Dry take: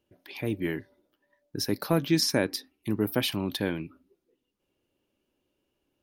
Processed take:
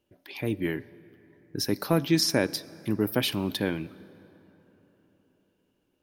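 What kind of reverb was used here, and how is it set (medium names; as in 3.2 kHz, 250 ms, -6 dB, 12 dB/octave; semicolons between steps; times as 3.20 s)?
plate-style reverb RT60 4.2 s, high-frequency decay 0.5×, DRR 19 dB; trim +1 dB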